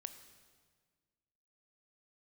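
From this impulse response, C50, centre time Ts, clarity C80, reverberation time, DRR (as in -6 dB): 11.0 dB, 14 ms, 12.0 dB, 1.6 s, 9.5 dB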